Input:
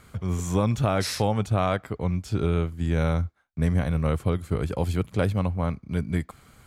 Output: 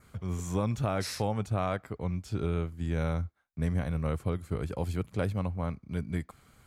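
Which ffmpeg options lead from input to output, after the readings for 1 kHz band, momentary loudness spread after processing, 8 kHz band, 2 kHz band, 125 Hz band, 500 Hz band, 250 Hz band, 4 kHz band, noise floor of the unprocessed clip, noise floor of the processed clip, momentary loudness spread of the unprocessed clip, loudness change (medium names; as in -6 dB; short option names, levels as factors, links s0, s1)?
-6.5 dB, 5 LU, -6.5 dB, -6.5 dB, -6.5 dB, -6.5 dB, -6.5 dB, -7.5 dB, -56 dBFS, -62 dBFS, 5 LU, -6.5 dB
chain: -af "adynamicequalizer=threshold=0.002:dfrequency=3300:dqfactor=3.1:tfrequency=3300:tqfactor=3.1:attack=5:release=100:ratio=0.375:range=2:mode=cutabove:tftype=bell,volume=0.473"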